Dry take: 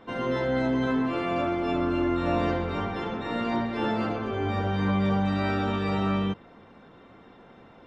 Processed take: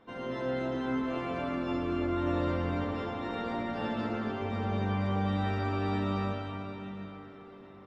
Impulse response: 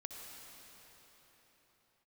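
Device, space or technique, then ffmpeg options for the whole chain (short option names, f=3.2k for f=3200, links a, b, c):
cave: -filter_complex "[0:a]aecho=1:1:151:0.376[a];[1:a]atrim=start_sample=2205[b];[a][b]afir=irnorm=-1:irlink=0,volume=-3.5dB"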